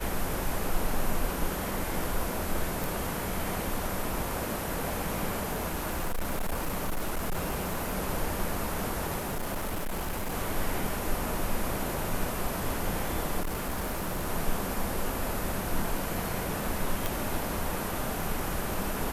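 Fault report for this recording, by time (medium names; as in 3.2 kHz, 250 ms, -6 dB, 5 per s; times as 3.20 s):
2.84 s: pop
5.48–7.98 s: clipped -26 dBFS
9.18–10.34 s: clipped -28.5 dBFS
13.40–14.28 s: clipped -27.5 dBFS
17.06 s: pop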